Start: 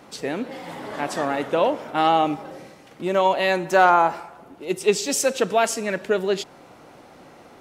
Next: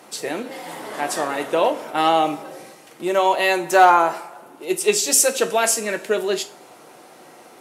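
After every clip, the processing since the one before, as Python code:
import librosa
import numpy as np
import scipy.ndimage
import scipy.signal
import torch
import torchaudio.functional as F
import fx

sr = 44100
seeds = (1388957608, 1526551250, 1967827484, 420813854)

y = scipy.signal.sosfilt(scipy.signal.butter(2, 260.0, 'highpass', fs=sr, output='sos'), x)
y = fx.peak_eq(y, sr, hz=11000.0, db=11.5, octaves=1.2)
y = fx.rev_double_slope(y, sr, seeds[0], early_s=0.27, late_s=2.1, knee_db=-27, drr_db=6.5)
y = F.gain(torch.from_numpy(y), 1.0).numpy()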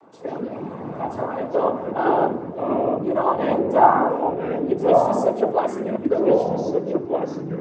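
y = scipy.signal.savgol_filter(x, 65, 4, mode='constant')
y = fx.noise_vocoder(y, sr, seeds[1], bands=16)
y = fx.echo_pitch(y, sr, ms=112, semitones=-4, count=3, db_per_echo=-3.0)
y = F.gain(torch.from_numpy(y), -1.0).numpy()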